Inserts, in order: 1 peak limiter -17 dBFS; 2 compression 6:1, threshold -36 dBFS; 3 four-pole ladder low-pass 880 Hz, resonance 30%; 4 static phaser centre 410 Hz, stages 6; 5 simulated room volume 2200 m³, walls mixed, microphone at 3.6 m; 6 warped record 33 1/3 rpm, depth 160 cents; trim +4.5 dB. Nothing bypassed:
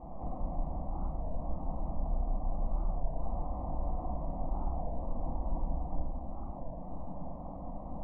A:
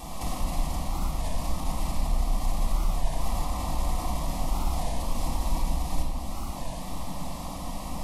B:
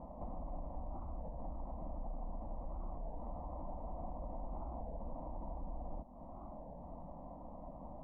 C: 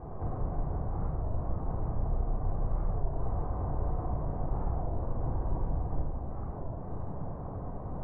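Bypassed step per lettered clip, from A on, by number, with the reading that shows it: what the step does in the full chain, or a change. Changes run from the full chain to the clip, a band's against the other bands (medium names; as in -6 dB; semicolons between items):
3, 500 Hz band -2.5 dB; 5, momentary loudness spread change -2 LU; 4, 125 Hz band +4.5 dB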